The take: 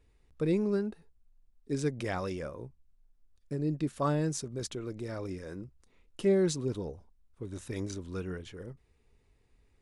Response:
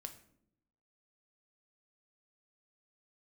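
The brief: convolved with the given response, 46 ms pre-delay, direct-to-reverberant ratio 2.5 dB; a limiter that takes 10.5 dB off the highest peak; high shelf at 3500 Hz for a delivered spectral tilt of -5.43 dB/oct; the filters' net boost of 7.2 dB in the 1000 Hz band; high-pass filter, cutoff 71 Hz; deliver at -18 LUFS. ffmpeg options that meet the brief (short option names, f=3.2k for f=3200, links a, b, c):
-filter_complex "[0:a]highpass=71,equalizer=f=1k:t=o:g=8.5,highshelf=f=3.5k:g=5.5,alimiter=limit=-23dB:level=0:latency=1,asplit=2[a][b];[1:a]atrim=start_sample=2205,adelay=46[c];[b][c]afir=irnorm=-1:irlink=0,volume=2dB[d];[a][d]amix=inputs=2:normalize=0,volume=15dB"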